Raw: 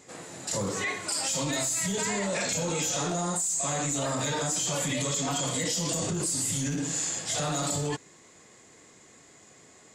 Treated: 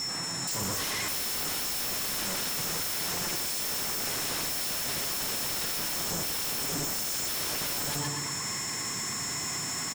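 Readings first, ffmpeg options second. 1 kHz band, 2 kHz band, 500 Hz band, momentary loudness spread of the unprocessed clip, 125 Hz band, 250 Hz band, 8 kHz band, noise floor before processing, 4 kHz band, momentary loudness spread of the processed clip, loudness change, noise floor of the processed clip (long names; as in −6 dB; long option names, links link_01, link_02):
−3.0 dB, 0.0 dB, −8.0 dB, 4 LU, −7.5 dB, −7.5 dB, −2.5 dB, −55 dBFS, +3.0 dB, 2 LU, −1.0 dB, −34 dBFS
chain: -af "aeval=exprs='val(0)+0.5*0.00841*sgn(val(0))':channel_layout=same,equalizer=frequency=125:width_type=o:width=1:gain=5,equalizer=frequency=500:width_type=o:width=1:gain=-9,equalizer=frequency=1000:width_type=o:width=1:gain=7,equalizer=frequency=2000:width_type=o:width=1:gain=4,equalizer=frequency=8000:width_type=o:width=1:gain=8,aecho=1:1:119|238|357|476|595|714:0.501|0.236|0.111|0.052|0.0245|0.0115,dynaudnorm=framelen=250:gausssize=5:maxgain=10dB,aeval=exprs='0.0944*(abs(mod(val(0)/0.0944+3,4)-2)-1)':channel_layout=same,aeval=exprs='val(0)+0.0282*sin(2*PI*5400*n/s)':channel_layout=same,alimiter=level_in=1.5dB:limit=-24dB:level=0:latency=1,volume=-1.5dB,equalizer=frequency=220:width_type=o:width=2.5:gain=3"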